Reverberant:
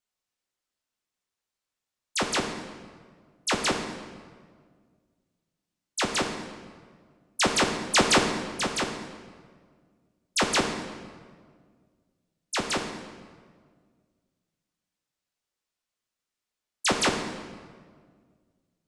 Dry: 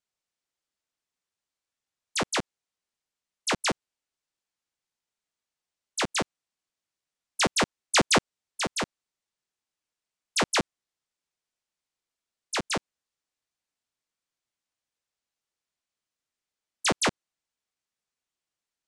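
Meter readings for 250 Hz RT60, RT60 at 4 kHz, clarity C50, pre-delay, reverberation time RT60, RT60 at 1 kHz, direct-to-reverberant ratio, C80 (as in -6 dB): 2.2 s, 1.2 s, 6.0 dB, 3 ms, 1.8 s, 1.6 s, 3.0 dB, 7.5 dB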